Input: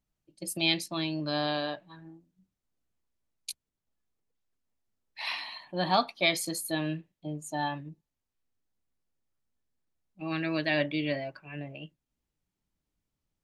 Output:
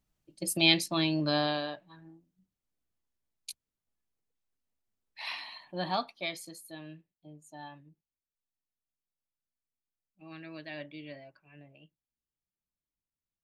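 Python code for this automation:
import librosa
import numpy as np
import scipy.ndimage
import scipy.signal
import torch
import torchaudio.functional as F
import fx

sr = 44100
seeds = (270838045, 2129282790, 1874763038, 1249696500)

y = fx.gain(x, sr, db=fx.line((1.28, 3.5), (1.71, -4.0), (5.78, -4.0), (6.61, -14.5)))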